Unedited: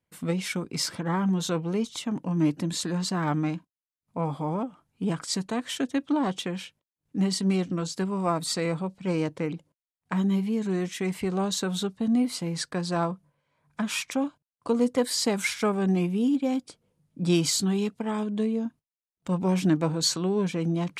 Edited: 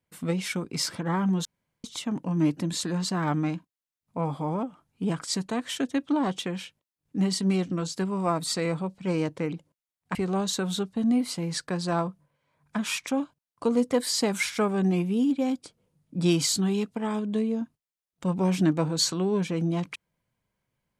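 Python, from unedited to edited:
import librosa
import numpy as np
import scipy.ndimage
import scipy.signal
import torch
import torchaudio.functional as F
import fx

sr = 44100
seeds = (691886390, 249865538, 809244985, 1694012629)

y = fx.edit(x, sr, fx.room_tone_fill(start_s=1.45, length_s=0.39),
    fx.cut(start_s=10.15, length_s=1.04), tone=tone)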